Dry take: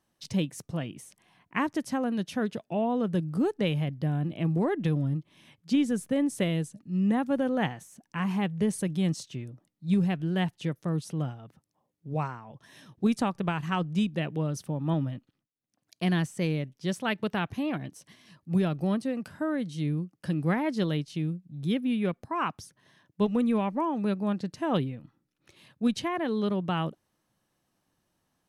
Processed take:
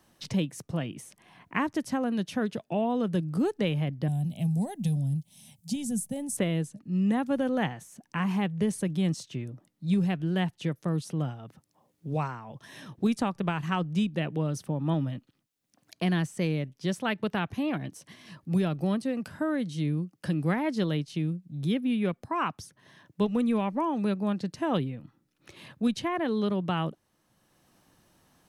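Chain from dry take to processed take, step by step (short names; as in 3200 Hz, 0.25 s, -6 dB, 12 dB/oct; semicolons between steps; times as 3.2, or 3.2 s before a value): 4.08–6.37 EQ curve 220 Hz 0 dB, 330 Hz -20 dB, 790 Hz -4 dB, 1200 Hz -24 dB, 8800 Hz +13 dB; three-band squash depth 40%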